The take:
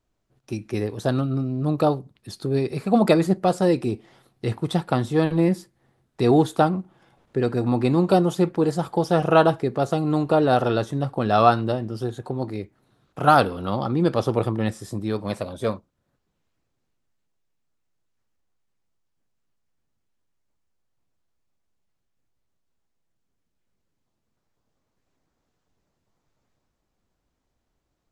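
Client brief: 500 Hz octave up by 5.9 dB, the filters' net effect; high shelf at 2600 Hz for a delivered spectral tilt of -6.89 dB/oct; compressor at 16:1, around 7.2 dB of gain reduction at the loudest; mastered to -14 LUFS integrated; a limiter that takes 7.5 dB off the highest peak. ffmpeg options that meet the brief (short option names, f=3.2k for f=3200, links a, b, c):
-af "equalizer=f=500:t=o:g=7.5,highshelf=f=2.6k:g=-5,acompressor=threshold=-14dB:ratio=16,volume=10.5dB,alimiter=limit=-2.5dB:level=0:latency=1"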